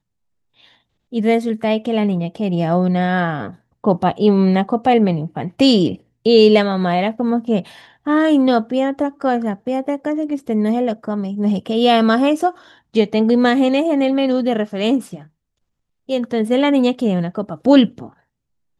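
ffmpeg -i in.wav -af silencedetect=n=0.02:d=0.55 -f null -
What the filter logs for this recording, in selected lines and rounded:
silence_start: 0.00
silence_end: 1.13 | silence_duration: 1.13
silence_start: 15.22
silence_end: 16.09 | silence_duration: 0.86
silence_start: 18.09
silence_end: 18.80 | silence_duration: 0.71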